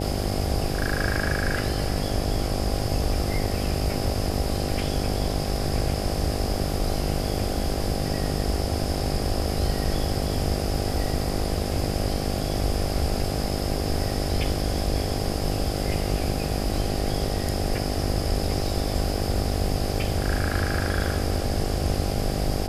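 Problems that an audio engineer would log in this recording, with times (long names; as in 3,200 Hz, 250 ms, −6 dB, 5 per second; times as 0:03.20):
mains buzz 50 Hz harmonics 16 −29 dBFS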